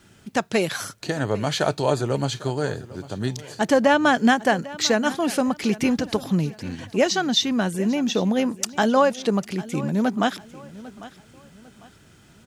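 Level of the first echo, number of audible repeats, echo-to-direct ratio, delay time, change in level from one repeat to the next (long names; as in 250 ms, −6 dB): −18.5 dB, 2, −18.0 dB, 799 ms, −9.0 dB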